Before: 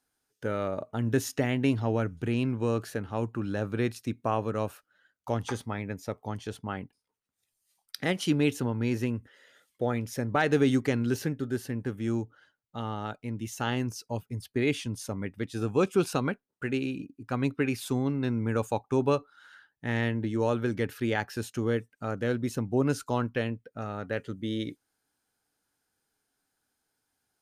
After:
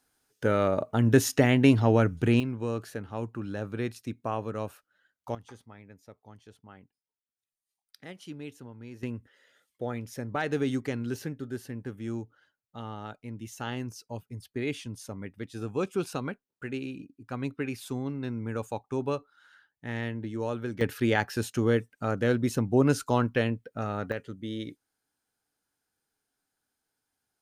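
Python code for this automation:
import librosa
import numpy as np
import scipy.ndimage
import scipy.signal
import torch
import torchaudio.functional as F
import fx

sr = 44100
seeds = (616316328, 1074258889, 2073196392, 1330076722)

y = fx.gain(x, sr, db=fx.steps((0.0, 6.0), (2.4, -3.5), (5.35, -16.0), (9.03, -5.0), (20.81, 3.5), (24.12, -3.5)))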